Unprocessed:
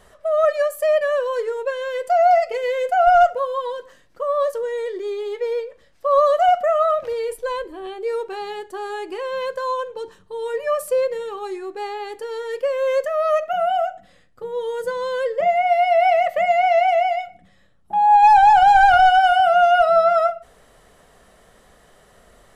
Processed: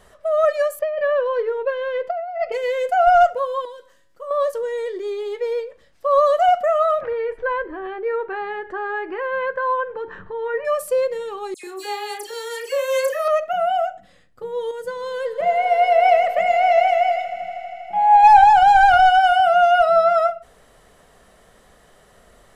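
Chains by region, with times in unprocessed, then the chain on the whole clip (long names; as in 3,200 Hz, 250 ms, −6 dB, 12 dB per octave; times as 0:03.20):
0:00.79–0:02.52: compressor whose output falls as the input rises −19 dBFS, ratio −0.5 + high-frequency loss of the air 290 metres
0:03.65–0:04.31: high-shelf EQ 6,100 Hz +7 dB + tuned comb filter 110 Hz, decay 0.81 s, mix 70%
0:07.01–0:10.65: upward compression, threshold −27 dBFS + low-pass with resonance 1,700 Hz, resonance Q 2.7
0:11.54–0:13.28: RIAA equalisation recording + double-tracking delay 34 ms −6 dB + all-pass dispersion lows, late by 95 ms, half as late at 2,500 Hz
0:14.71–0:18.44: echo that builds up and dies away 80 ms, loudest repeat 5, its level −18 dB + multiband upward and downward expander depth 40%
whole clip: no processing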